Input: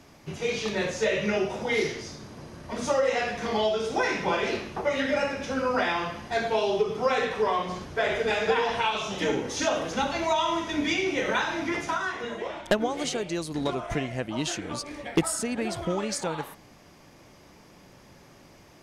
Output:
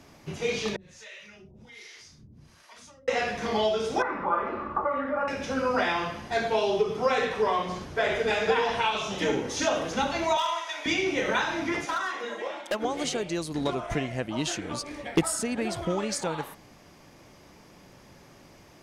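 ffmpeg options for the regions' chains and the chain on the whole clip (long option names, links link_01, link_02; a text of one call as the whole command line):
ffmpeg -i in.wav -filter_complex "[0:a]asettb=1/sr,asplit=3[link_01][link_02][link_03];[link_01]atrim=end=0.764[link_04];[link_02]atrim=start=0.76:end=3.08,asetpts=PTS-STARTPTS,afade=type=in:duration=0.004:curve=qsin,afade=type=out:start_time=2.316:duration=0.004:curve=qsin,equalizer=frequency=470:width_type=o:width=2.4:gain=-14.5,acompressor=threshold=-44dB:ratio=3:attack=3.2:release=140:knee=1:detection=peak,acrossover=split=440[link_05][link_06];[link_05]aeval=exprs='val(0)*(1-1/2+1/2*cos(2*PI*1.3*n/s))':channel_layout=same[link_07];[link_06]aeval=exprs='val(0)*(1-1/2-1/2*cos(2*PI*1.3*n/s))':channel_layout=same[link_08];[link_07][link_08]amix=inputs=2:normalize=0[link_09];[link_03]atrim=start=3.076[link_10];[link_04][link_09]acrossfade=duration=0.004:curve1=hsin:curve2=qsin[link_11];[link_11][link_10]acrossfade=duration=0.004:curve1=qsin:curve2=hsin,asettb=1/sr,asplit=3[link_12][link_13][link_14];[link_12]atrim=end=4.024[link_15];[link_13]atrim=start=4.02:end=5.28,asetpts=PTS-STARTPTS,afade=type=in:duration=0.004:curve=qsin,afade=type=out:start_time=1.256:duration=0.004:curve=qsin,aecho=1:1:3.5:0.42,atrim=end_sample=55566,acompressor=threshold=-34dB:ratio=2:attack=3.2:release=140:knee=1:detection=peak,lowpass=frequency=1200:width_type=q:width=7.3[link_16];[link_14]atrim=start=5.276[link_17];[link_15][link_16]acrossfade=duration=0.004:curve1=hsin:curve2=qsin[link_18];[link_18][link_17]acrossfade=duration=0.004:curve1=qsin:curve2=hsin,asettb=1/sr,asplit=3[link_19][link_20][link_21];[link_19]atrim=end=10.374[link_22];[link_20]atrim=start=10.37:end=10.86,asetpts=PTS-STARTPTS,afade=type=in:duration=0.004:curve=qsin,afade=type=out:start_time=0.486:duration=0.004:curve=qsin,highpass=frequency=670:width=0.5412,highpass=frequency=670:width=1.3066,asoftclip=type=hard:threshold=-21.5dB[link_23];[link_21]atrim=start=10.856[link_24];[link_22][link_23]acrossfade=duration=0.004:curve1=hsin:curve2=qsin[link_25];[link_25][link_24]acrossfade=duration=0.004:curve1=qsin:curve2=hsin,asettb=1/sr,asplit=3[link_26][link_27][link_28];[link_26]atrim=end=11.854[link_29];[link_27]atrim=start=11.85:end=12.85,asetpts=PTS-STARTPTS,afade=type=in:duration=0.004:curve=qsin,afade=type=out:start_time=0.996:duration=0.004:curve=qsin,highpass=350,aecho=1:1:3.7:0.45,atrim=end_sample=44100,volume=23.5dB,asoftclip=hard,volume=-23.5dB[link_30];[link_28]atrim=start=12.846[link_31];[link_29][link_30]acrossfade=duration=0.004:curve1=hsin:curve2=qsin[link_32];[link_32][link_31]acrossfade=duration=0.004:curve1=qsin:curve2=hsin" out.wav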